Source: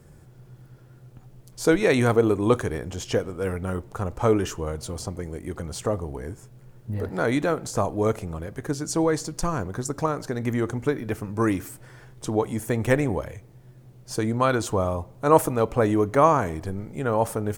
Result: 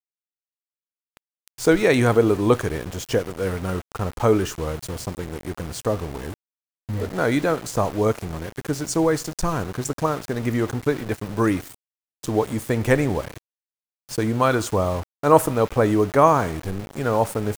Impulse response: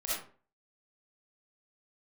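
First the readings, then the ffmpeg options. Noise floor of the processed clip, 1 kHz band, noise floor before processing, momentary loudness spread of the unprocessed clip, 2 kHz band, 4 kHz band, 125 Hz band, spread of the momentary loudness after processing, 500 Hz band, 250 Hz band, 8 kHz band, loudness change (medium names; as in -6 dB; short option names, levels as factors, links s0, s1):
under -85 dBFS, +2.5 dB, -50 dBFS, 14 LU, +3.0 dB, +3.5 dB, +2.0 dB, 14 LU, +2.5 dB, +2.5 dB, +2.0 dB, +2.5 dB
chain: -filter_complex "[0:a]asplit=2[s0][s1];[s1]highpass=f=1400:t=q:w=1.8[s2];[1:a]atrim=start_sample=2205,lowpass=8900[s3];[s2][s3]afir=irnorm=-1:irlink=0,volume=0.0562[s4];[s0][s4]amix=inputs=2:normalize=0,aeval=exprs='val(0)*gte(abs(val(0)),0.0188)':c=same,volume=1.33"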